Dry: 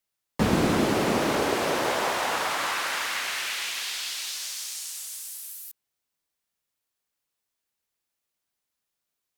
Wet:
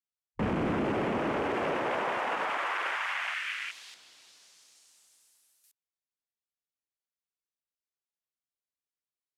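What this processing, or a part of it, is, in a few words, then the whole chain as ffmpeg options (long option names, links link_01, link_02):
soft clipper into limiter: -filter_complex "[0:a]lowpass=9500,afwtdn=0.0282,asoftclip=type=tanh:threshold=-15dB,alimiter=limit=-23dB:level=0:latency=1:release=43,asettb=1/sr,asplit=3[link_01][link_02][link_03];[link_01]atrim=end=3.944[link_04];[link_02]atrim=start=3.94:end=5.64,asetpts=PTS-STARTPTS,afade=type=in:duration=0.004:curve=qsin,afade=type=out:start_time=1.696:duration=0.004:curve=qsin,tiltshelf=frequency=780:gain=8[link_05];[link_03]atrim=start=5.636[link_06];[link_04][link_05]acrossfade=duration=0.004:curve1=hsin:curve2=qsin[link_07];[link_07][link_06]acrossfade=duration=0.004:curve1=qsin:curve2=hsin"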